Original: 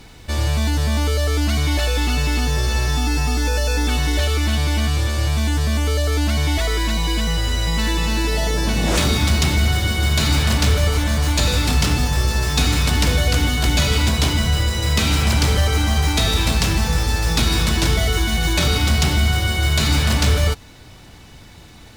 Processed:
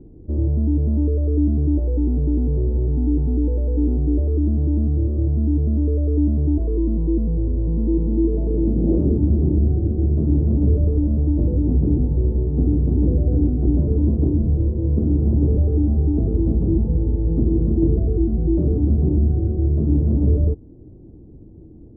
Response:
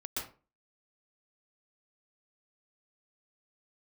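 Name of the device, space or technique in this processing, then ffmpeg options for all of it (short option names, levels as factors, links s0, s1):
under water: -filter_complex "[0:a]asettb=1/sr,asplit=3[s0][s1][s2];[s0]atrim=end=13.274[s3];[s1]atrim=start=13.27:end=14.27,asetpts=PTS-STARTPTS,afade=t=in:d=0.004:c=qsin,afade=t=out:st=0.996:d=0.004:c=qsin,highshelf=f=2700:g=8.5[s4];[s2]atrim=start=14.266[s5];[s3][s4]acrossfade=d=0.004:c1=hsin:c2=qsin[s6];[s6][s5]acrossfade=d=0.004:c1=qsin:c2=hsin,lowpass=f=440:w=0.5412,lowpass=f=440:w=1.3066,equalizer=f=330:t=o:w=0.58:g=8.5"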